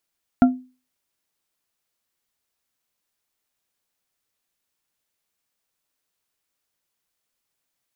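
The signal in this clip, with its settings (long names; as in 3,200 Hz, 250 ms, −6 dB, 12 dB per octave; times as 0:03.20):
struck glass bar, lowest mode 254 Hz, modes 3, decay 0.34 s, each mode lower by 7 dB, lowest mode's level −7 dB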